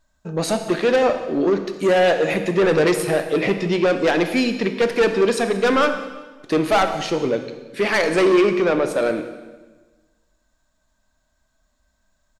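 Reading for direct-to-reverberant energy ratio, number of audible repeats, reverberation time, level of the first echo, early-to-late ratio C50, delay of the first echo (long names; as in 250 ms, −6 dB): 7.5 dB, 2, 1.2 s, −21.0 dB, 9.0 dB, 183 ms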